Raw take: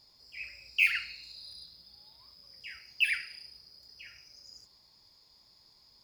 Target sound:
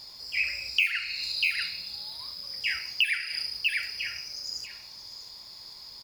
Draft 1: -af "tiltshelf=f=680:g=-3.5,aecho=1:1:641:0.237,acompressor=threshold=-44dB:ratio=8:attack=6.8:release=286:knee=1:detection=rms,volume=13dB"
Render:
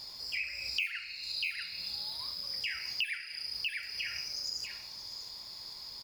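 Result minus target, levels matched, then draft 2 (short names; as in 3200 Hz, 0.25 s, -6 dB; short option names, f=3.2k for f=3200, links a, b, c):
compressor: peak gain reduction +9 dB
-af "tiltshelf=f=680:g=-3.5,aecho=1:1:641:0.237,acompressor=threshold=-33.5dB:ratio=8:attack=6.8:release=286:knee=1:detection=rms,volume=13dB"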